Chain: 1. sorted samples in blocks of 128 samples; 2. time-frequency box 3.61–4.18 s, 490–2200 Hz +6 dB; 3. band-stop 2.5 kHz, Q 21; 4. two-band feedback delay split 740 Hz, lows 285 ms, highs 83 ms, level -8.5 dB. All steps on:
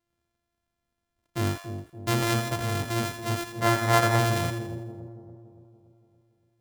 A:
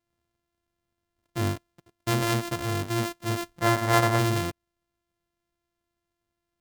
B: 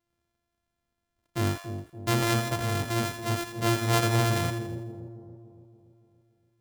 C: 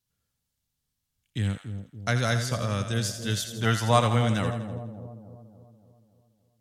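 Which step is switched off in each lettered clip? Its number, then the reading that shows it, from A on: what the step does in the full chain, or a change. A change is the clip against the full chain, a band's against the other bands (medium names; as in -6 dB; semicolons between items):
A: 4, echo-to-direct -7.0 dB to none; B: 2, crest factor change -2.0 dB; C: 1, 125 Hz band +2.0 dB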